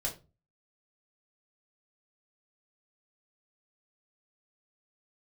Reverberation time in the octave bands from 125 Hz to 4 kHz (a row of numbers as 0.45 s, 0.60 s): 0.50 s, 0.40 s, 0.35 s, 0.25 s, 0.25 s, 0.20 s